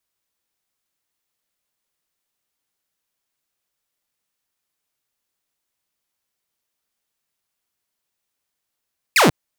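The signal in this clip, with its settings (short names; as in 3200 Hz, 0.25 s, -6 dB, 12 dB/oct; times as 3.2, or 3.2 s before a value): laser zap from 2700 Hz, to 120 Hz, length 0.14 s saw, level -8 dB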